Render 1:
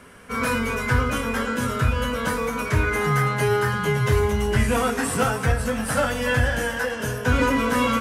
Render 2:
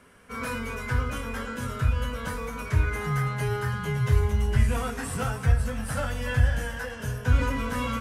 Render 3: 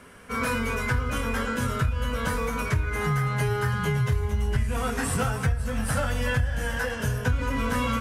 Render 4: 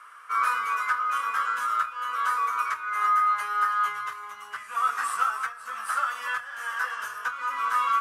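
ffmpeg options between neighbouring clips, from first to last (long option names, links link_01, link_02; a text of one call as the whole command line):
ffmpeg -i in.wav -af "asubboost=boost=4:cutoff=140,volume=-8.5dB" out.wav
ffmpeg -i in.wav -af "acompressor=threshold=-28dB:ratio=6,volume=6.5dB" out.wav
ffmpeg -i in.wav -af "highpass=frequency=1200:width_type=q:width=10,volume=-6dB" out.wav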